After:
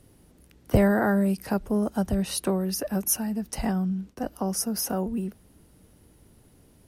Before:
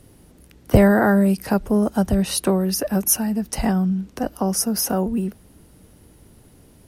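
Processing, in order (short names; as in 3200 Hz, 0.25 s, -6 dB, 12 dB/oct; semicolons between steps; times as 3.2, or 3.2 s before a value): 1.57–4.32 expander -32 dBFS; gain -6.5 dB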